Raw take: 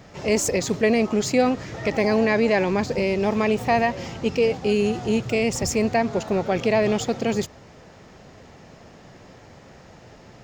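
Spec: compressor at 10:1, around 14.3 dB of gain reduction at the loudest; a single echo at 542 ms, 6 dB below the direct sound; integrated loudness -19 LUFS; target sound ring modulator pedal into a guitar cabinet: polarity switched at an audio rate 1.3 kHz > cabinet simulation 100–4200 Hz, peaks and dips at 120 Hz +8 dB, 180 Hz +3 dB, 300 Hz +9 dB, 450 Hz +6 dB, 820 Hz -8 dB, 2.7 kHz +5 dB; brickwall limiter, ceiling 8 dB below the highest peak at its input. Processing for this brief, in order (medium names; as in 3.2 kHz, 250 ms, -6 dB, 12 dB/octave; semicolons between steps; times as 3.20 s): compression 10:1, threshold -30 dBFS; peak limiter -26.5 dBFS; delay 542 ms -6 dB; polarity switched at an audio rate 1.3 kHz; cabinet simulation 100–4200 Hz, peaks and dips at 120 Hz +8 dB, 180 Hz +3 dB, 300 Hz +9 dB, 450 Hz +6 dB, 820 Hz -8 dB, 2.7 kHz +5 dB; trim +17 dB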